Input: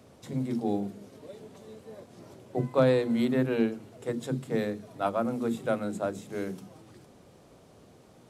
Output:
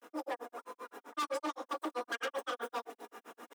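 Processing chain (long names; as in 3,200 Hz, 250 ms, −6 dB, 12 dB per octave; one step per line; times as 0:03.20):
in parallel at −1.5 dB: downward compressor, threshold −36 dBFS, peak gain reduction 16.5 dB
on the sum: notch filter 1,900 Hz, Q 9.2
rectangular room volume 870 cubic metres, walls mixed, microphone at 0.83 metres
granular cloud 237 ms, grains 3.3 per second, spray 100 ms, pitch spread up and down by 0 semitones
wrong playback speed 33 rpm record played at 78 rpm
comb filter 4.2 ms, depth 47%
hard clipping −27 dBFS, distortion −5 dB
reversed playback
upward compression, threshold −39 dBFS
reversed playback
high-pass filter 250 Hz 24 dB per octave
level −4.5 dB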